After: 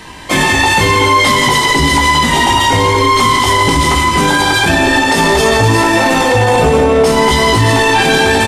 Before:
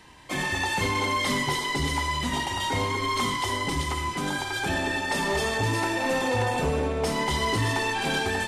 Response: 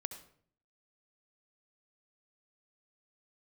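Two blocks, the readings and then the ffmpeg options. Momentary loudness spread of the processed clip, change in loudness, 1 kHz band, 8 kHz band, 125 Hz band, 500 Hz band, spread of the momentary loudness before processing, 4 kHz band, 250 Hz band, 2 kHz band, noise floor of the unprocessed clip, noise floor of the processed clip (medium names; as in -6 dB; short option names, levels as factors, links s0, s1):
1 LU, +16.5 dB, +17.0 dB, +16.0 dB, +15.0 dB, +17.0 dB, 3 LU, +16.0 dB, +16.0 dB, +16.0 dB, -31 dBFS, -13 dBFS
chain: -filter_complex "[0:a]aecho=1:1:170:0.355,asplit=2[s0][s1];[1:a]atrim=start_sample=2205,asetrate=37926,aresample=44100,adelay=18[s2];[s1][s2]afir=irnorm=-1:irlink=0,volume=0.708[s3];[s0][s3]amix=inputs=2:normalize=0,alimiter=level_in=8.41:limit=0.891:release=50:level=0:latency=1,volume=0.891"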